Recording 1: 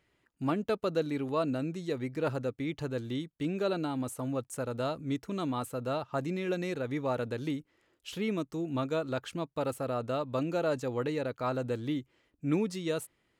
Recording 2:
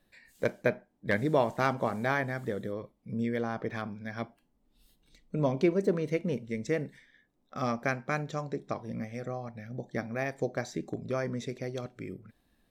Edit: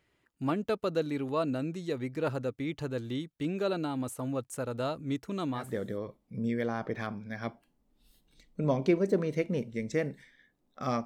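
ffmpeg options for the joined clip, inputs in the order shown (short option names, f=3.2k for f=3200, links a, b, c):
-filter_complex "[0:a]apad=whole_dur=11.05,atrim=end=11.05,atrim=end=5.77,asetpts=PTS-STARTPTS[a];[1:a]atrim=start=2.24:end=7.8,asetpts=PTS-STARTPTS[b];[a][b]acrossfade=d=0.28:c1=tri:c2=tri"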